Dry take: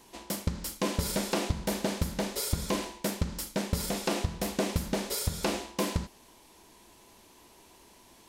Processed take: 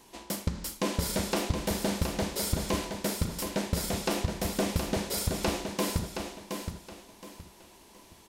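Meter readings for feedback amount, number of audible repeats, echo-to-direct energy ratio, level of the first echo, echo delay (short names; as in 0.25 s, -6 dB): 29%, 3, -6.0 dB, -6.5 dB, 0.72 s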